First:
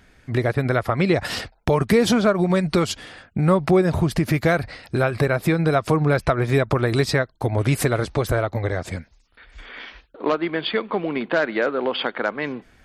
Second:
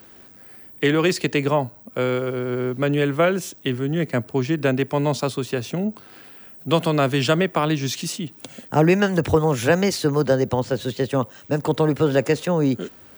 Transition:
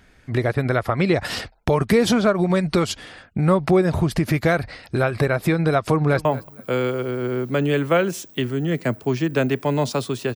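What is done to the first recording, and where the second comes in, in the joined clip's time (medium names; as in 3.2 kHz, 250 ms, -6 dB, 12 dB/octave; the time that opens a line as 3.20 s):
first
5.80–6.25 s: echo throw 230 ms, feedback 25%, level -17.5 dB
6.25 s: go over to second from 1.53 s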